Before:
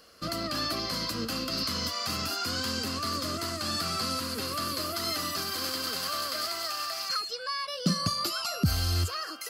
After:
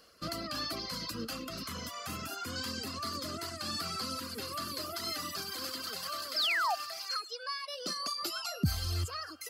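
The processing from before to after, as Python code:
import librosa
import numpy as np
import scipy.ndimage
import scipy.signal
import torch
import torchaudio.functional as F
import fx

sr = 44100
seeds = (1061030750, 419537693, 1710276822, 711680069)

y = fx.echo_feedback(x, sr, ms=104, feedback_pct=48, wet_db=-17.5)
y = fx.dereverb_blind(y, sr, rt60_s=1.2)
y = fx.peak_eq(y, sr, hz=4600.0, db=-9.5, octaves=0.47, at=(1.35, 2.56))
y = fx.spec_paint(y, sr, seeds[0], shape='fall', start_s=6.36, length_s=0.39, low_hz=650.0, high_hz=5500.0, level_db=-26.0)
y = fx.highpass(y, sr, hz=330.0, slope=24, at=(6.99, 8.22))
y = F.gain(torch.from_numpy(y), -4.0).numpy()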